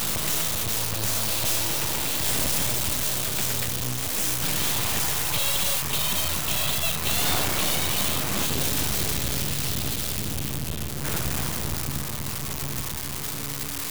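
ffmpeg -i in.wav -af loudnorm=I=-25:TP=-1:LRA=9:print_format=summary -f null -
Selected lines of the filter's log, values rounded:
Input Integrated:    -24.9 LUFS
Input True Peak:      -8.0 dBTP
Input LRA:             5.4 LU
Input Threshold:     -34.9 LUFS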